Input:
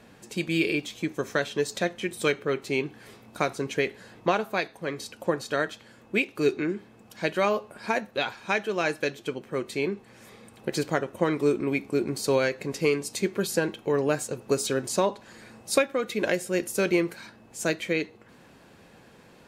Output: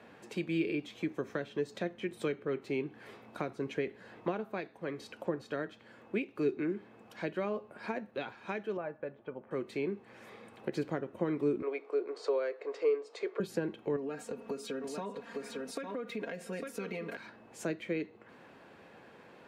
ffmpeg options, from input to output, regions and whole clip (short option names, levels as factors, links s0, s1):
-filter_complex "[0:a]asettb=1/sr,asplit=3[s0][s1][s2];[s0]atrim=end=8.774[s3];[s1]atrim=start=8.77:end=9.51,asetpts=PTS-STARTPTS,afade=t=in:d=0.004:c=qsin,afade=t=out:st=0.736:d=0.004:c=qsin,lowpass=1000,equalizer=f=310:w=2.3:g=-13.5,aecho=1:1:3.4:0.33,atrim=end_sample=32634[s4];[s2]atrim=start=9.506[s5];[s3][s4]acrossfade=d=0.004:c1=hsin:c2=qsin[s6];[s6][s5]acrossfade=d=0.004:c1=qsin:c2=hsin,asettb=1/sr,asplit=3[s7][s8][s9];[s7]atrim=end=11.624[s10];[s8]atrim=start=11.62:end=13.4,asetpts=PTS-STARTPTS,afade=t=in:d=0.004:c=qsin,afade=t=out:st=1.776:d=0.004:c=qsin,highpass=f=440:w=0.5412,highpass=f=440:w=1.3066,equalizer=f=450:t=q:w=4:g=9,equalizer=f=730:t=q:w=4:g=7,equalizer=f=1200:t=q:w=4:g=7,equalizer=f=2600:t=q:w=4:g=-3,equalizer=f=6100:t=q:w=4:g=-5,lowpass=f=7000:w=0.5412,lowpass=f=7000:w=1.3066,bandreject=f=770:w=8.6[s11];[s9]atrim=start=13.396[s12];[s10][s11]acrossfade=d=0.004:c1=hsin:c2=qsin[s13];[s13][s12]acrossfade=d=0.004:c1=qsin:c2=hsin,asettb=1/sr,asplit=3[s14][s15][s16];[s14]atrim=end=13.964[s17];[s15]atrim=start=13.96:end=17.17,asetpts=PTS-STARTPTS,afade=t=in:d=0.004:c=qsin,afade=t=out:st=3.206:d=0.004:c=qsin,aecho=1:1:4.3:0.9,atrim=end_sample=141561,aecho=1:1:852:0.299,atrim=end_sample=141561,acompressor=threshold=0.0316:ratio=4:attack=3.2:release=140:knee=1:detection=peak[s18];[s16]atrim=start=17.166[s19];[s17][s18]acrossfade=d=0.004:c1=hsin:c2=qsin[s20];[s20][s19]acrossfade=d=0.004:c1=qsin:c2=hsin,highpass=67,bass=f=250:g=-8,treble=f=4000:g=-14,acrossover=split=340[s21][s22];[s22]acompressor=threshold=0.00794:ratio=3[s23];[s21][s23]amix=inputs=2:normalize=0"